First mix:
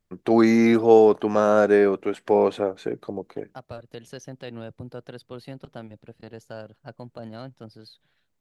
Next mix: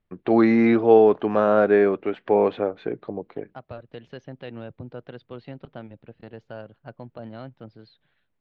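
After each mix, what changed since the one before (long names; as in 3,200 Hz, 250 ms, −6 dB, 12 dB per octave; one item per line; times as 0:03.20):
master: add low-pass filter 3,400 Hz 24 dB per octave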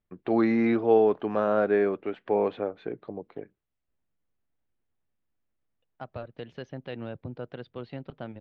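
first voice −6.0 dB
second voice: entry +2.45 s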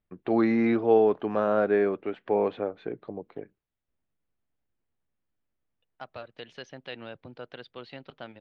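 second voice: add spectral tilt +3.5 dB per octave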